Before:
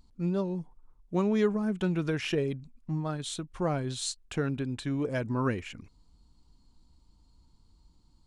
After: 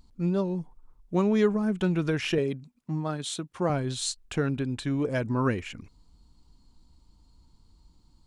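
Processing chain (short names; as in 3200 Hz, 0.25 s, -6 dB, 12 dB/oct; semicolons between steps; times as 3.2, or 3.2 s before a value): 2.38–3.7 HPF 140 Hz 12 dB/oct; gain +3 dB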